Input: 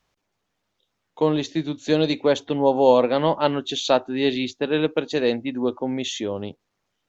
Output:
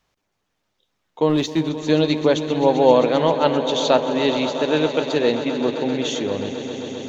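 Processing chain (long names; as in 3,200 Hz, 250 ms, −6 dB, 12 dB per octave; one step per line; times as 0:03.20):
0:01.29–0:01.69: leveller curve on the samples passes 1
echo that builds up and dies away 131 ms, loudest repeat 5, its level −15 dB
level +1.5 dB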